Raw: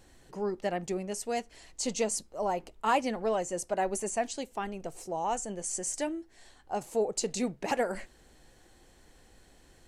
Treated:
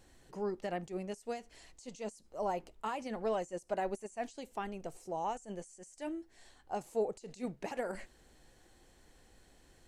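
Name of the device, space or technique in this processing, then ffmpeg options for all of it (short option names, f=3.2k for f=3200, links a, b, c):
de-esser from a sidechain: -filter_complex "[0:a]asplit=2[a][b];[b]highpass=5.1k,apad=whole_len=435541[c];[a][c]sidechaincompress=threshold=-50dB:ratio=16:attack=2.8:release=65,volume=-4dB"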